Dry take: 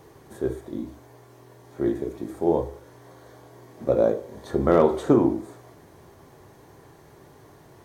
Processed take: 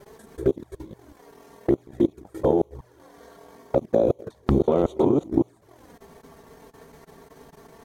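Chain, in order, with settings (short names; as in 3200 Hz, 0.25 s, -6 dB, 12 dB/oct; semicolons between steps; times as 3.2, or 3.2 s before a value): local time reversal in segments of 0.187 s; level quantiser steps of 13 dB; envelope flanger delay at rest 5.6 ms, full sweep at -26.5 dBFS; transient shaper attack +3 dB, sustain -9 dB; gain +7.5 dB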